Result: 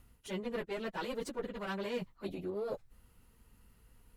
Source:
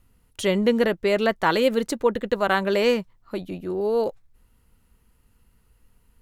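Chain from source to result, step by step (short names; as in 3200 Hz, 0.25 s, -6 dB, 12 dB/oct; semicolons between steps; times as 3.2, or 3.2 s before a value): one diode to ground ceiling -22 dBFS; reverse; compressor 6:1, threshold -35 dBFS, peak gain reduction 17.5 dB; reverse; plain phase-vocoder stretch 0.67×; gain +2.5 dB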